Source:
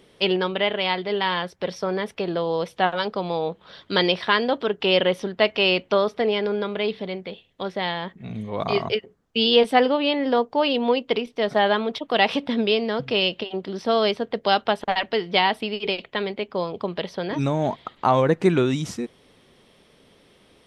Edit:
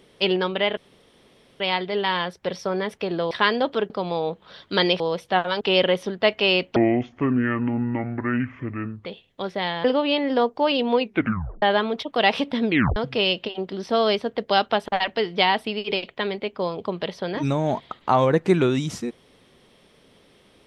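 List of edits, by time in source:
0:00.77: splice in room tone 0.83 s
0:02.48–0:03.09: swap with 0:04.19–0:04.78
0:05.93–0:07.26: play speed 58%
0:08.05–0:09.80: remove
0:10.95: tape stop 0.63 s
0:12.64: tape stop 0.28 s

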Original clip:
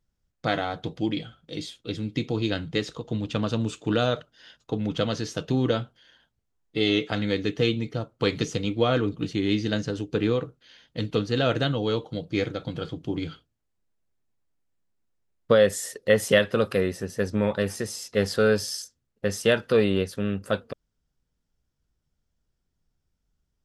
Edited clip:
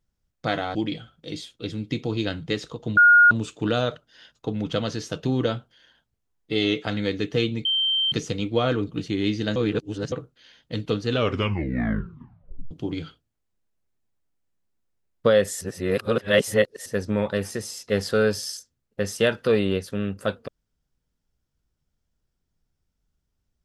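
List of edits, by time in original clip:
0:00.75–0:01.00: remove
0:03.22–0:03.56: beep over 1,430 Hz −10 dBFS
0:07.90–0:08.37: beep over 3,130 Hz −19.5 dBFS
0:09.81–0:10.37: reverse
0:11.31: tape stop 1.65 s
0:15.86–0:17.11: reverse

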